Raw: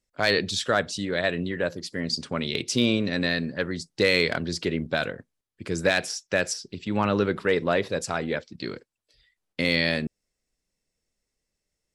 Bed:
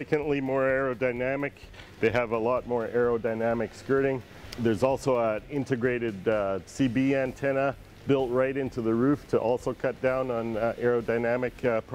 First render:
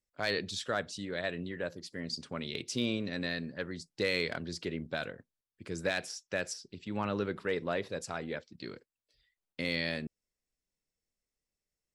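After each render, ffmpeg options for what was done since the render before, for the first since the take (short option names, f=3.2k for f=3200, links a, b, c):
-af "volume=-10dB"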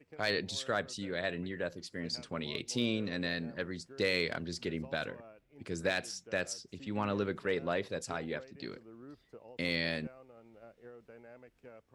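-filter_complex "[1:a]volume=-27.5dB[a];[0:a][a]amix=inputs=2:normalize=0"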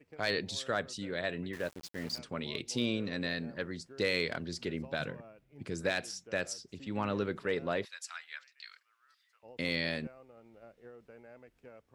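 -filter_complex "[0:a]asettb=1/sr,asplit=3[a][b][c];[a]atrim=end=1.534[d];[b]atrim=start=1.53:end=2.19,asetpts=PTS-STARTPTS,afade=t=in:d=0.004:c=qsin,afade=t=out:st=0.656:d=0.004:c=qsin,aeval=exprs='val(0)*gte(abs(val(0)),0.00596)':c=same[e];[c]atrim=start=2.186[f];[d][e]acrossfade=d=0.004:c1=hsin:c2=qsin[g];[g][f]acrossfade=d=0.004:c1=qsin:c2=hsin,asettb=1/sr,asplit=3[h][i][j];[h]atrim=end=4.994[k];[i]atrim=start=4.99:end=5.7,asetpts=PTS-STARTPTS,afade=t=in:d=0.004:c=qsin,afade=t=out:st=0.706:d=0.004:c=qsin,equalizer=f=150:t=o:w=0.77:g=9[l];[j]atrim=start=5.696[m];[k][l]acrossfade=d=0.004:c1=hsin:c2=qsin[n];[n][m]acrossfade=d=0.004:c1=qsin:c2=hsin,asettb=1/sr,asplit=3[o][p][q];[o]atrim=end=7.854[r];[p]atrim=start=7.85:end=9.43,asetpts=PTS-STARTPTS,afade=t=in:d=0.004:c=qsin,afade=t=out:st=1.576:d=0.004:c=qsin,highpass=f=1.4k:w=0.5412,highpass=f=1.4k:w=1.3066[s];[q]atrim=start=9.426[t];[r][s]acrossfade=d=0.004:c1=hsin:c2=qsin[u];[u][t]acrossfade=d=0.004:c1=qsin:c2=hsin"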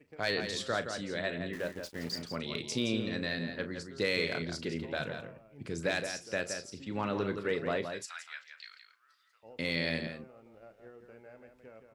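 -filter_complex "[0:a]asplit=2[a][b];[b]adelay=36,volume=-12dB[c];[a][c]amix=inputs=2:normalize=0,asplit=2[d][e];[e]adelay=169.1,volume=-7dB,highshelf=f=4k:g=-3.8[f];[d][f]amix=inputs=2:normalize=0"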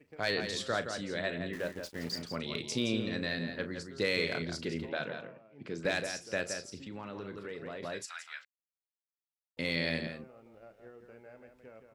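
-filter_complex "[0:a]asettb=1/sr,asplit=3[a][b][c];[a]atrim=end=4.894[d];[b]atrim=start=4.89:end=5.85,asetpts=PTS-STARTPTS,afade=t=in:d=0.004:c=qsin,afade=t=out:st=0.956:d=0.004:c=qsin,highpass=180,lowpass=4.3k[e];[c]atrim=start=5.846[f];[d][e]acrossfade=d=0.004:c1=hsin:c2=qsin[g];[g][f]acrossfade=d=0.004:c1=qsin:c2=hsin,asettb=1/sr,asplit=3[h][i][j];[h]atrim=end=6.804[k];[i]atrim=start=6.8:end=7.83,asetpts=PTS-STARTPTS,afade=t=in:d=0.004:c=qsin,afade=t=out:st=1.026:d=0.004:c=qsin,acompressor=threshold=-41dB:ratio=3:attack=3.2:release=140:knee=1:detection=peak[l];[j]atrim=start=7.826[m];[k][l]acrossfade=d=0.004:c1=hsin:c2=qsin[n];[n][m]acrossfade=d=0.004:c1=qsin:c2=hsin,asplit=3[o][p][q];[o]atrim=end=8.45,asetpts=PTS-STARTPTS,afade=t=out:st=8.446:d=0.004:c=hsin[r];[p]atrim=start=8.45:end=9.57,asetpts=PTS-STARTPTS,volume=0[s];[q]atrim=start=9.57,asetpts=PTS-STARTPTS,afade=t=in:d=0.004:c=hsin[t];[r][s][t]concat=n=3:v=0:a=1"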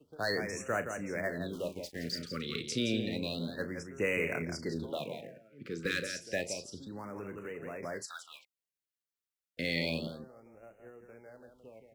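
-filter_complex "[0:a]acrossover=split=340|860|1900[a][b][c][d];[c]acrusher=bits=3:mode=log:mix=0:aa=0.000001[e];[a][b][e][d]amix=inputs=4:normalize=0,afftfilt=real='re*(1-between(b*sr/1024,770*pow(4200/770,0.5+0.5*sin(2*PI*0.3*pts/sr))/1.41,770*pow(4200/770,0.5+0.5*sin(2*PI*0.3*pts/sr))*1.41))':imag='im*(1-between(b*sr/1024,770*pow(4200/770,0.5+0.5*sin(2*PI*0.3*pts/sr))/1.41,770*pow(4200/770,0.5+0.5*sin(2*PI*0.3*pts/sr))*1.41))':win_size=1024:overlap=0.75"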